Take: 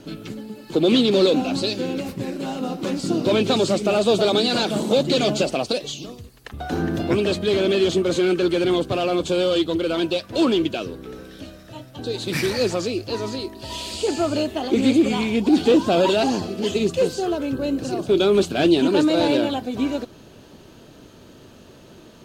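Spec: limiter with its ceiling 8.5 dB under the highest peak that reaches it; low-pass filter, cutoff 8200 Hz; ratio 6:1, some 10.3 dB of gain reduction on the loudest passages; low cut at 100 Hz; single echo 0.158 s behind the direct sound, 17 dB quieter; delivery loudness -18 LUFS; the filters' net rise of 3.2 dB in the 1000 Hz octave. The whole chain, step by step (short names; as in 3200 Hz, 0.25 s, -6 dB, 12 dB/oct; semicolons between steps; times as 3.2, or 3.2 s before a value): HPF 100 Hz; LPF 8200 Hz; bell 1000 Hz +4.5 dB; compressor 6:1, threshold -23 dBFS; limiter -20.5 dBFS; echo 0.158 s -17 dB; gain +11.5 dB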